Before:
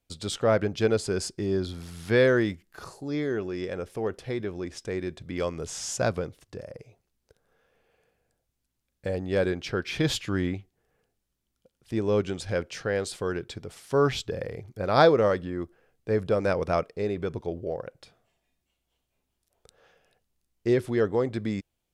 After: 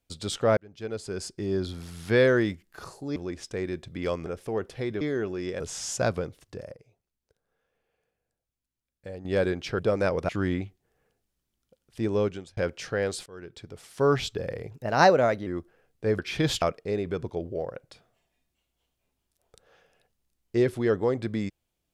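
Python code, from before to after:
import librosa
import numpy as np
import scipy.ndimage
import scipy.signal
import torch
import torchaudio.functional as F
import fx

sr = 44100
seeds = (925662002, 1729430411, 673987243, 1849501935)

y = fx.edit(x, sr, fx.fade_in_span(start_s=0.57, length_s=1.1),
    fx.swap(start_s=3.16, length_s=0.59, other_s=4.5, other_length_s=1.1),
    fx.clip_gain(start_s=6.74, length_s=2.51, db=-9.5),
    fx.swap(start_s=9.79, length_s=0.43, other_s=16.23, other_length_s=0.5),
    fx.fade_out_span(start_s=12.09, length_s=0.41),
    fx.fade_in_from(start_s=13.19, length_s=0.75, floor_db=-23.0),
    fx.speed_span(start_s=14.64, length_s=0.87, speed=1.15), tone=tone)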